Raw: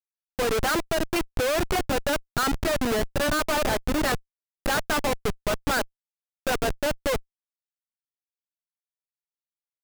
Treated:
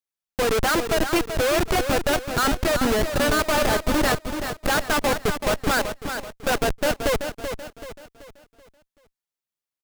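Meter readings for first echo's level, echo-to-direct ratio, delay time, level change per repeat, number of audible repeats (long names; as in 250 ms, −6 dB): −8.0 dB, −7.0 dB, 382 ms, −7.5 dB, 4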